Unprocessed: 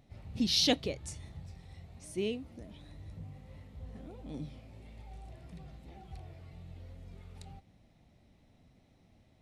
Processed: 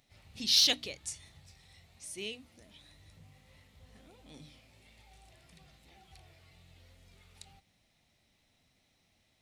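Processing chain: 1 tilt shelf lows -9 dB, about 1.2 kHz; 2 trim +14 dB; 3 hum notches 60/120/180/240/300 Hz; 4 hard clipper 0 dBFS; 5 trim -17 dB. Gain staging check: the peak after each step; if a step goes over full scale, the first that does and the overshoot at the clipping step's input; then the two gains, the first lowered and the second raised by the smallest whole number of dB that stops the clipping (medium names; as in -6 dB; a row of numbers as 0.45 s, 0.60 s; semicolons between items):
-8.5 dBFS, +5.5 dBFS, +5.5 dBFS, 0.0 dBFS, -17.0 dBFS; step 2, 5.5 dB; step 2 +8 dB, step 5 -11 dB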